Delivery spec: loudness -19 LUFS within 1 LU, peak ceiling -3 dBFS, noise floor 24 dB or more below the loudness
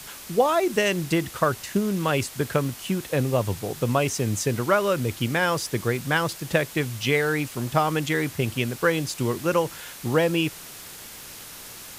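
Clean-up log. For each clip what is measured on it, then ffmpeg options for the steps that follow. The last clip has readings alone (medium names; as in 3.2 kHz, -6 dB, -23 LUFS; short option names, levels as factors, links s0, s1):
noise floor -41 dBFS; noise floor target -49 dBFS; loudness -24.5 LUFS; peak level -6.0 dBFS; loudness target -19.0 LUFS
-> -af "afftdn=nr=8:nf=-41"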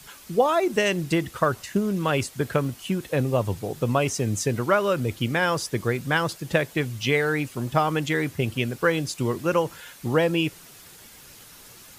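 noise floor -48 dBFS; noise floor target -49 dBFS
-> -af "afftdn=nr=6:nf=-48"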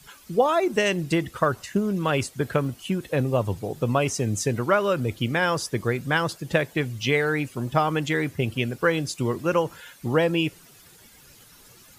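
noise floor -52 dBFS; loudness -24.5 LUFS; peak level -6.0 dBFS; loudness target -19.0 LUFS
-> -af "volume=1.88,alimiter=limit=0.708:level=0:latency=1"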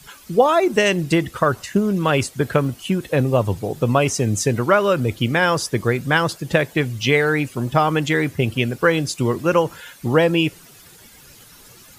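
loudness -19.5 LUFS; peak level -3.0 dBFS; noise floor -46 dBFS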